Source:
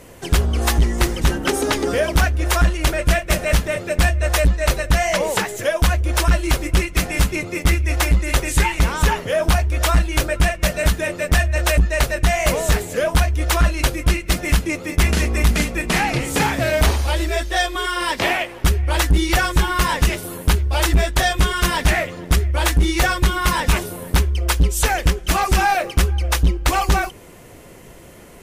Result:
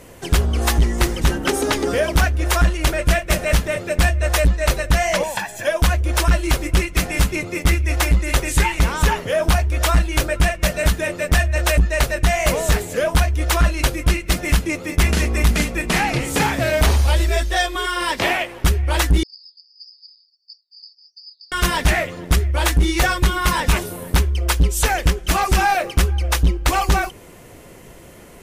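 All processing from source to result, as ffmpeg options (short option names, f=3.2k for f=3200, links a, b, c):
-filter_complex "[0:a]asettb=1/sr,asplit=3[a][b][c];[a]atrim=end=5.234[d];[b]atrim=start=5.23:end=5.67,asetpts=PTS-STARTPTS,afade=t=in:d=0.004:c=qsin,afade=t=out:st=0.436:d=0.004:c=qsin,aecho=1:1:1.2:0.83,atrim=end_sample=19404,acrossover=split=270|1200|3300[e][f][g][h];[e]acompressor=threshold=-42dB:ratio=3[i];[f]acompressor=threshold=-29dB:ratio=3[j];[g]acompressor=threshold=-28dB:ratio=3[k];[h]acompressor=threshold=-35dB:ratio=3[l];[i][j][k][l]amix=inputs=4:normalize=0[m];[c]atrim=start=5.666[n];[d][m]acrossfade=d=0.004:c1=hsin:c2=qsin[o];[o][n]acrossfade=d=0.004:c1=qsin:c2=hsin,asettb=1/sr,asplit=3[p][q][r];[p]atrim=end=16.904[s];[q]atrim=start=16.9:end=17.54,asetpts=PTS-STARTPTS,afade=t=in:d=0.004:c=qsin,afade=t=out:st=0.636:d=0.004:c=qsin,bass=f=250:g=5,treble=f=4k:g=2,bandreject=f=310:w=7[t];[r]atrim=start=17.536[u];[s][t]acrossfade=d=0.004:c1=hsin:c2=qsin[v];[v][u]acrossfade=d=0.004:c1=qsin:c2=hsin,asettb=1/sr,asplit=3[w][x][y];[w]atrim=end=19.234[z];[x]atrim=start=19.23:end=21.52,asetpts=PTS-STARTPTS,afade=t=in:d=0.004:c=qsin,afade=t=out:st=2.286:d=0.004:c=qsin,asuperpass=centerf=4800:order=20:qfactor=7.3,flanger=delay=4.4:depth=4.2:regen=86:speed=1.5:shape=triangular[aa];[y]atrim=start=21.516[ab];[z][aa]acrossfade=d=0.004:c1=hsin:c2=qsin[ac];[ac][ab]acrossfade=d=0.004:c1=qsin:c2=hsin"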